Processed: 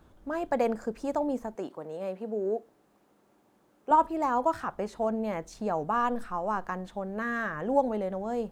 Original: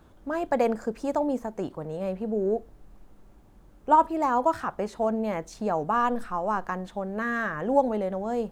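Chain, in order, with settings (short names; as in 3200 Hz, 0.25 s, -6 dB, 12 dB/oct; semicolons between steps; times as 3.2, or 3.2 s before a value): 1.55–3.91 HPF 260 Hz 12 dB/oct; gain -3 dB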